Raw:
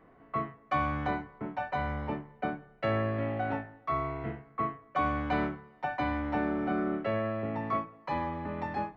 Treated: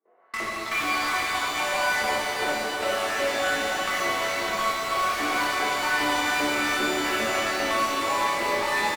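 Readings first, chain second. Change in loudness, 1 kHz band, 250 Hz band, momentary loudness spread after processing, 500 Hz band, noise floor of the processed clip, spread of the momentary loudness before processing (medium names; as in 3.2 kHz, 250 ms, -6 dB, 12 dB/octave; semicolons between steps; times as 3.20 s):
+8.5 dB, +7.5 dB, 0.0 dB, 3 LU, +6.0 dB, -32 dBFS, 6 LU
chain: coarse spectral quantiser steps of 15 dB; on a send: feedback delay 315 ms, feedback 57%, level -12 dB; on the sum: gate with hold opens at -51 dBFS; LFO high-pass saw up 2.5 Hz 320–2700 Hz; chorus 0.23 Hz, depth 5.2 ms; dynamic bell 730 Hz, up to -5 dB, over -42 dBFS, Q 1.1; level-controlled noise filter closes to 2 kHz; high-pass 200 Hz 12 dB/octave; treble shelf 3.5 kHz +11.5 dB; in parallel at -3 dB: fuzz box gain 39 dB, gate -44 dBFS; on the sum: compression 6:1, threshold -26 dBFS, peak gain reduction 10.5 dB; pitch-shifted reverb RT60 3.9 s, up +12 st, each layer -8 dB, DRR -6.5 dB; trim -4.5 dB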